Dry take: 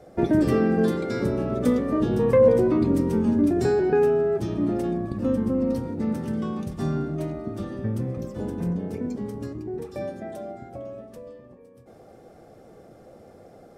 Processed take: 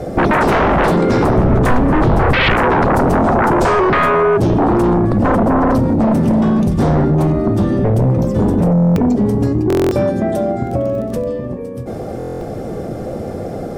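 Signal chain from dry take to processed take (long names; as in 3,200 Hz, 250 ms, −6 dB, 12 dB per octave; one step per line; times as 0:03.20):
low-shelf EQ 420 Hz +8.5 dB
sine wavefolder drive 16 dB, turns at −2.5 dBFS
0:01.38–0:02.55: low-shelf EQ 120 Hz +11.5 dB
0:10.64–0:11.30: surface crackle 19 per second −24 dBFS
downward compressor 2 to 1, threshold −17 dBFS, peak gain reduction 10.5 dB
buffer that repeats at 0:08.73/0:09.68/0:12.18, samples 1,024, times 9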